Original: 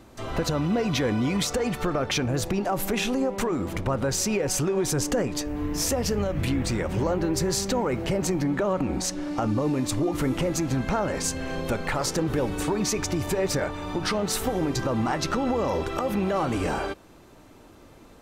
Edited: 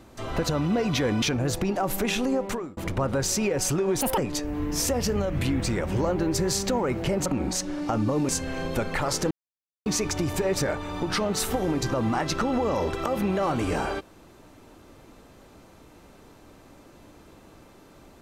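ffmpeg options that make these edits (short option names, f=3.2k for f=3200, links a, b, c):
-filter_complex "[0:a]asplit=9[a][b][c][d][e][f][g][h][i];[a]atrim=end=1.222[j];[b]atrim=start=2.108:end=3.66,asetpts=PTS-STARTPTS,afade=t=out:st=1.212:d=0.34[k];[c]atrim=start=3.66:end=4.904,asetpts=PTS-STARTPTS,afade=t=in:d=0.004:c=hsin[l];[d]atrim=start=4.9:end=5.2,asetpts=PTS-STARTPTS,asetrate=78498,aresample=44100[m];[e]atrim=start=5.196:end=8.282[n];[f]atrim=start=8.748:end=9.782[o];[g]atrim=start=11.218:end=12.24,asetpts=PTS-STARTPTS,afade=t=out:st=1.018:d=0.004:c=hsin[p];[h]atrim=start=12.24:end=12.79,asetpts=PTS-STARTPTS,volume=0[q];[i]atrim=start=12.79,asetpts=PTS-STARTPTS,afade=t=in:d=0.004:c=hsin[r];[k][l]concat=n=2:v=0:a=1[s];[j][s]acrossfade=d=0.004:c1=hsin:c2=hsin[t];[t][m]acrossfade=d=0.004:c1=hsin:c2=hsin[u];[u][n]acrossfade=d=0.004:c1=hsin:c2=hsin[v];[v][o]acrossfade=d=0.004:c1=hsin:c2=hsin[w];[p][q][r]concat=n=3:v=0:a=1[x];[w][x]acrossfade=d=0.004:c1=hsin:c2=hsin"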